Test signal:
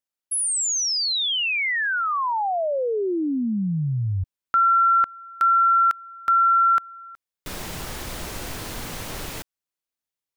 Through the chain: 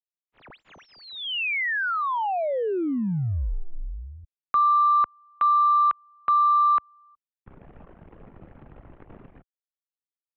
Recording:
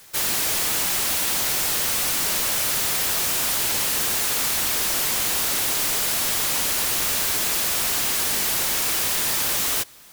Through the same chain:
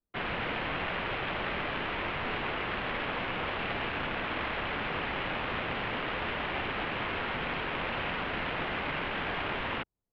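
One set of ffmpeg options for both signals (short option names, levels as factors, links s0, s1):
-af "anlmdn=39.8,adynamicsmooth=sensitivity=3:basefreq=1400,highpass=f=160:t=q:w=0.5412,highpass=f=160:t=q:w=1.307,lowpass=f=3200:t=q:w=0.5176,lowpass=f=3200:t=q:w=0.7071,lowpass=f=3200:t=q:w=1.932,afreqshift=-180,volume=0.841"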